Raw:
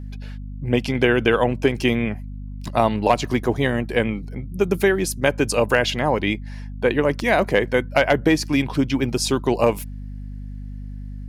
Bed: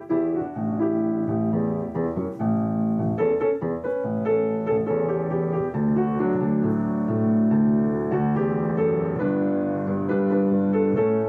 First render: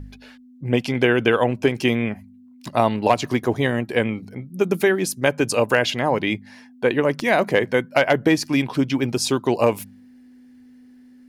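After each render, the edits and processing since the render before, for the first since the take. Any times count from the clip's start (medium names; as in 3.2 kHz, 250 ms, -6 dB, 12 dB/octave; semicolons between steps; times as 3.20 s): de-hum 50 Hz, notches 4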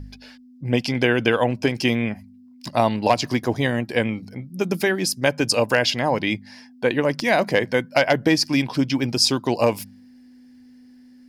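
graphic EQ with 31 bands 400 Hz -5 dB, 1.25 kHz -4 dB, 5 kHz +11 dB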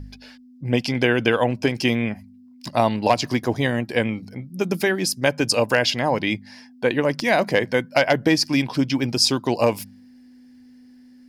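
no audible change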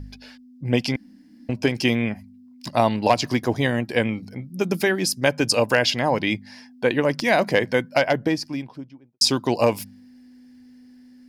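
0.96–1.49 s: room tone; 7.69–9.21 s: studio fade out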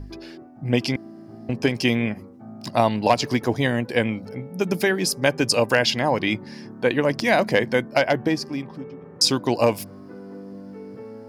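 add bed -18 dB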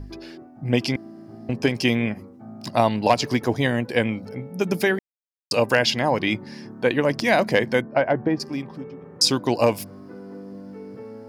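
4.99–5.51 s: mute; 7.81–8.40 s: low-pass 1.6 kHz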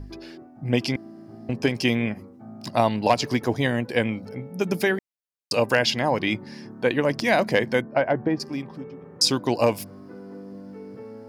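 trim -1.5 dB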